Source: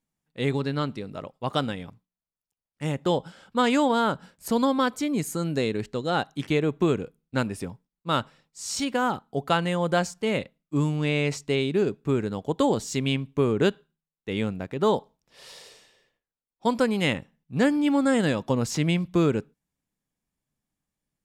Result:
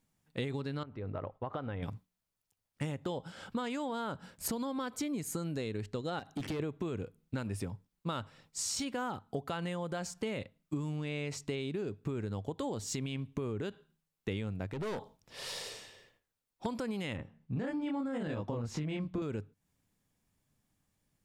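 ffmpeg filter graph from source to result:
-filter_complex "[0:a]asettb=1/sr,asplit=3[a][b][c];[a]atrim=end=0.834[d];[b]atrim=start=0.83:end=1.83,asetpts=PTS-STARTPTS,afade=t=in:d=0.004:c=qsin,afade=t=out:st=0.996:d=0.004:c=qsin,lowpass=1.5k,equalizer=f=190:w=0.84:g=-8,acompressor=threshold=-40dB:ratio=2.5:attack=3.2:release=140:knee=1:detection=peak[e];[c]atrim=start=1.826[f];[d][e]acrossfade=d=0.004:c1=hsin:c2=qsin[g];[g][f]acrossfade=d=0.004:c1=qsin:c2=hsin,asettb=1/sr,asplit=3[h][i][j];[h]atrim=end=6.194[k];[i]atrim=start=6.19:end=6.6,asetpts=PTS-STARTPTS,afade=t=in:d=0.004:c=qsin,afade=t=out:st=0.406:d=0.004:c=qsin,acompressor=threshold=-31dB:ratio=12:attack=3.2:release=140:knee=1:detection=peak,equalizer=f=240:t=o:w=1.7:g=4.5,asoftclip=type=hard:threshold=-32.5dB[l];[j]atrim=start=6.596[m];[k][l]acrossfade=d=0.004:c1=hsin:c2=qsin[n];[n][m]acrossfade=d=0.004:c1=qsin:c2=hsin,asettb=1/sr,asplit=3[o][p][q];[o]atrim=end=14.734[r];[p]atrim=start=14.73:end=16.66,asetpts=PTS-STARTPTS,afade=t=in:d=0.004:c=qsin,afade=t=out:st=1.926:d=0.004:c=qsin,acompressor=threshold=-28dB:ratio=2:attack=3.2:release=140:knee=1:detection=peak,aeval=exprs='(tanh(50.1*val(0)+0.25)-tanh(0.25))/50.1':c=same[s];[q]atrim=start=16.656[t];[r][s]acrossfade=d=0.004:c1=hsin:c2=qsin[u];[u][t]acrossfade=d=0.004:c1=qsin:c2=hsin,asettb=1/sr,asplit=3[v][w][x];[v]atrim=end=17.164[y];[w]atrim=start=17.16:end=19.22,asetpts=PTS-STARTPTS,afade=t=in:d=0.004:c=qsin,afade=t=out:st=2.056:d=0.004:c=qsin,lowpass=f=1.8k:p=1,asplit=2[z][aa];[aa]adelay=26,volume=-2dB[ab];[z][ab]amix=inputs=2:normalize=0,atrim=end_sample=90846[ac];[x]atrim=start=19.216[ad];[y][ac]acrossfade=d=0.004:c1=hsin:c2=qsin[ae];[ae][ad]acrossfade=d=0.004:c1=qsin:c2=hsin,equalizer=f=100:t=o:w=0.33:g=9.5,alimiter=limit=-18dB:level=0:latency=1:release=54,acompressor=threshold=-40dB:ratio=8,volume=6dB"

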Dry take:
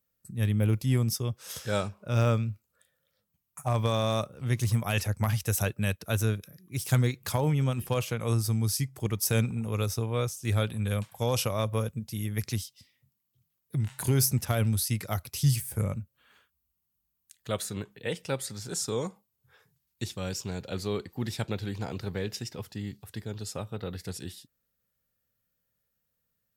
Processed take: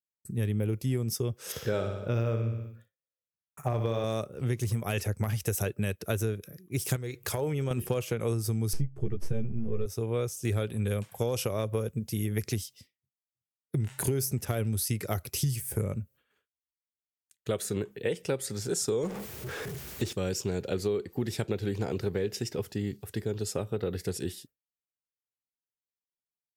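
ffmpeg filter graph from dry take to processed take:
-filter_complex "[0:a]asettb=1/sr,asplit=3[a][b][c];[a]atrim=end=1.524[d];[b]atrim=start=1.52:end=4.04,asetpts=PTS-STARTPTS,afade=t=in:d=0.004:c=qsin,afade=t=out:st=2.516:d=0.004:c=qsin,equalizer=f=9k:w=1.1:g=-14.5,aecho=1:1:61|122|183|244|305|366:0.447|0.228|0.116|0.0593|0.0302|0.0154,atrim=end_sample=111132[e];[c]atrim=start=4.036[f];[d][e]acrossfade=d=0.004:c1=hsin:c2=qsin[g];[g][f]acrossfade=d=0.004:c1=qsin:c2=hsin,asettb=1/sr,asplit=3[h][i][j];[h]atrim=end=6.964[k];[i]atrim=start=6.96:end=7.71,asetpts=PTS-STARTPTS,afade=t=in:d=0.004:c=qsin,afade=t=out:st=0.746:d=0.004:c=qsin,equalizer=f=200:w=1.8:g=-11.5,acompressor=threshold=-31dB:ratio=5:attack=3.2:release=140:knee=1:detection=peak[l];[j]atrim=start=7.706[m];[k][l]acrossfade=d=0.004:c1=hsin:c2=qsin[n];[n][m]acrossfade=d=0.004:c1=qsin:c2=hsin,asettb=1/sr,asplit=3[o][p][q];[o]atrim=end=8.734[r];[p]atrim=start=8.73:end=9.86,asetpts=PTS-STARTPTS,afade=t=in:d=0.004:c=qsin,afade=t=out:st=1.126:d=0.004:c=qsin,aeval=exprs='if(lt(val(0),0),0.447*val(0),val(0))':c=same,aemphasis=mode=reproduction:type=riaa,asplit=2[s][t];[t]adelay=14,volume=-3.5dB[u];[s][u]amix=inputs=2:normalize=0,atrim=end_sample=49833[v];[q]atrim=start=9.856[w];[r][v]acrossfade=d=0.004:c1=hsin:c2=qsin[x];[x][w]acrossfade=d=0.004:c1=qsin:c2=hsin,asettb=1/sr,asplit=3[y][z][aa];[y]atrim=end=19.034[ab];[z]atrim=start=19.03:end=20.13,asetpts=PTS-STARTPTS,afade=t=in:d=0.004:c=qsin,afade=t=out:st=1.096:d=0.004:c=qsin,aeval=exprs='val(0)+0.5*0.0168*sgn(val(0))':c=same,highshelf=f=7.5k:g=-8[ac];[aa]atrim=start=20.126[ad];[ab][ac]acrossfade=d=0.004:c1=hsin:c2=qsin[ae];[ae][ad]acrossfade=d=0.004:c1=qsin:c2=hsin,agate=range=-33dB:threshold=-50dB:ratio=3:detection=peak,equalizer=f=400:t=o:w=0.67:g=9,equalizer=f=1k:t=o:w=0.67:g=-4,equalizer=f=4k:t=o:w=0.67:g=-4,acompressor=threshold=-30dB:ratio=6,volume=4dB"

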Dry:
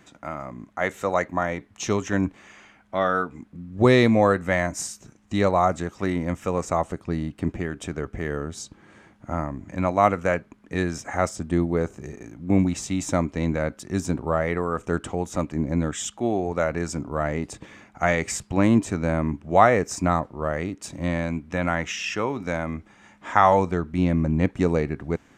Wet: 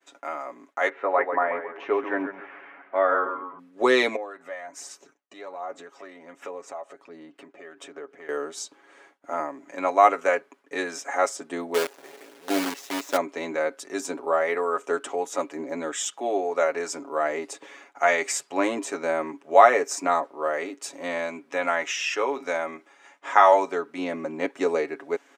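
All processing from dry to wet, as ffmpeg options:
-filter_complex "[0:a]asettb=1/sr,asplit=3[a][b][c];[a]atrim=end=0.894[d];[b]atrim=start=0.89:end=3.59,asetpts=PTS-STARTPTS,afade=t=in:d=0.004:c=qsin,afade=t=out:st=2.696:d=0.004:c=qsin,lowpass=f=2.2k:w=0.5412,lowpass=f=2.2k:w=1.3066,acompressor=mode=upward:threshold=-39dB:ratio=2.5:attack=3.2:release=140:knee=2.83:detection=peak,asplit=6[e][f][g][h][i][j];[f]adelay=135,afreqshift=-95,volume=-8dB[k];[g]adelay=270,afreqshift=-190,volume=-15.3dB[l];[h]adelay=405,afreqshift=-285,volume=-22.7dB[m];[i]adelay=540,afreqshift=-380,volume=-30dB[n];[j]adelay=675,afreqshift=-475,volume=-37.3dB[o];[e][k][l][m][n][o]amix=inputs=6:normalize=0,atrim=end_sample=119070[p];[c]atrim=start=3.586[q];[d][p]acrossfade=d=0.004:c1=hsin:c2=qsin[r];[r][q]acrossfade=d=0.004:c1=qsin:c2=hsin,asettb=1/sr,asplit=3[s][t][u];[s]atrim=end=4.164[v];[t]atrim=start=4.16:end=8.29,asetpts=PTS-STARTPTS,afade=t=in:d=0.004:c=qsin,afade=t=out:st=4.126:d=0.004:c=qsin,highshelf=f=5.2k:g=-11.5,acompressor=threshold=-39dB:ratio=3:attack=3.2:release=140:knee=1:detection=peak,aphaser=in_gain=1:out_gain=1:delay=1.7:decay=0.37:speed=1.3:type=sinusoidal[w];[u]atrim=start=8.286[x];[v][w]acrossfade=d=0.004:c1=hsin:c2=qsin[y];[y][x]acrossfade=d=0.004:c1=qsin:c2=hsin,asettb=1/sr,asplit=3[z][aa][ab];[z]atrim=end=11.744[ac];[aa]atrim=start=11.74:end=13.17,asetpts=PTS-STARTPTS,afade=t=in:d=0.004:c=qsin,afade=t=out:st=1.426:d=0.004:c=qsin,lowpass=4.4k,acrusher=bits=5:dc=4:mix=0:aa=0.000001[ad];[ab]atrim=start=13.166[ae];[ac][ad]acrossfade=d=0.004:c1=hsin:c2=qsin[af];[af][ae]acrossfade=d=0.004:c1=qsin:c2=hsin,highpass=f=360:w=0.5412,highpass=f=360:w=1.3066,agate=range=-33dB:threshold=-51dB:ratio=3:detection=peak,aecho=1:1:7.2:0.65"

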